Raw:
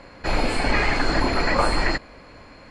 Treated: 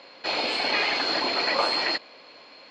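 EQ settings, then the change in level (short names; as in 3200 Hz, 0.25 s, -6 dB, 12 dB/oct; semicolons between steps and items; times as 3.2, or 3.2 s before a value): HPF 440 Hz 12 dB/oct; air absorption 210 m; resonant high shelf 2500 Hz +11 dB, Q 1.5; -1.0 dB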